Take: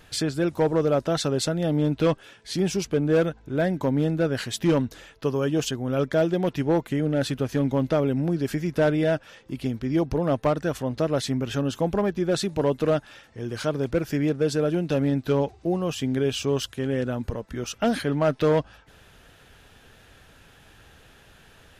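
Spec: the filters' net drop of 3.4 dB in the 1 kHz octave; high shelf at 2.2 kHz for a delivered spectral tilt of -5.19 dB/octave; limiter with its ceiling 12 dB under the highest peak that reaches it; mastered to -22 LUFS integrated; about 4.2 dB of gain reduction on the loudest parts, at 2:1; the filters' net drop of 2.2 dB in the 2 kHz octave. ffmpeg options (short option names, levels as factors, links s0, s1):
-af "equalizer=f=1000:t=o:g=-5,equalizer=f=2000:t=o:g=-4,highshelf=f=2200:g=5.5,acompressor=threshold=0.0562:ratio=2,volume=4.22,alimiter=limit=0.224:level=0:latency=1"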